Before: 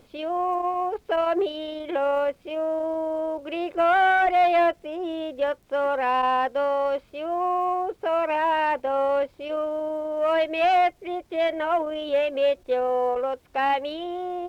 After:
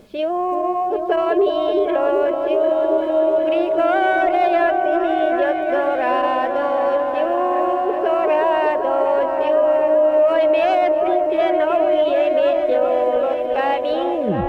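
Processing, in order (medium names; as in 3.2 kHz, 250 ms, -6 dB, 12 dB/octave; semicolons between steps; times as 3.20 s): tape stop on the ending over 0.35 s; in parallel at +1 dB: compression, threshold -29 dBFS, peak gain reduction 11.5 dB; on the sum: peaking EQ 390 Hz +7.5 dB 0.4 oct; small resonant body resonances 200/610/1700 Hz, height 10 dB, ringing for 85 ms; on a send: delay with an opening low-pass 380 ms, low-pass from 750 Hz, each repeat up 1 oct, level -3 dB; on the sum: loudness maximiser +5.5 dB; trim -7.5 dB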